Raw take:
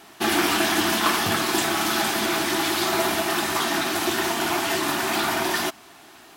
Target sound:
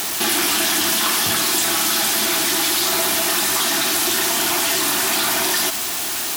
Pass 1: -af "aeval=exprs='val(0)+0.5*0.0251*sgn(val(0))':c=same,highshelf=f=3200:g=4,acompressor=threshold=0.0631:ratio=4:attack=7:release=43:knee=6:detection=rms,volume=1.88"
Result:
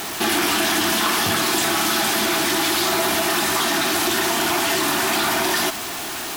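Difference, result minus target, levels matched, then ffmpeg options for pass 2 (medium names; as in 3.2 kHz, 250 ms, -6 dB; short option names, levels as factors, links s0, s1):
8 kHz band -3.0 dB
-af "aeval=exprs='val(0)+0.5*0.0251*sgn(val(0))':c=same,highshelf=f=3200:g=14,acompressor=threshold=0.0631:ratio=4:attack=7:release=43:knee=6:detection=rms,volume=1.88"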